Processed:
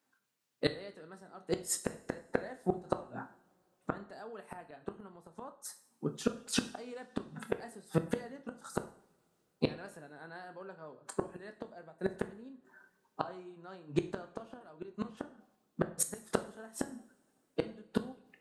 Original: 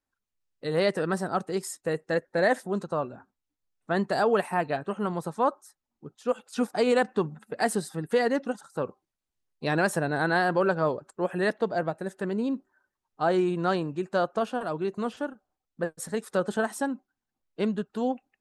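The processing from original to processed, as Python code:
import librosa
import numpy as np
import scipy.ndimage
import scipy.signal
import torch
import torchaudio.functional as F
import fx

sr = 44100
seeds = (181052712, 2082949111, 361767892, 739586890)

y = scipy.signal.sosfilt(scipy.signal.butter(4, 130.0, 'highpass', fs=sr, output='sos'), x)
y = fx.chorus_voices(y, sr, voices=6, hz=0.54, base_ms=25, depth_ms=2.6, mix_pct=20)
y = fx.gate_flip(y, sr, shuts_db=-25.0, range_db=-32)
y = fx.rev_double_slope(y, sr, seeds[0], early_s=0.53, late_s=3.6, knee_db=-28, drr_db=8.5)
y = F.gain(torch.from_numpy(y), 10.0).numpy()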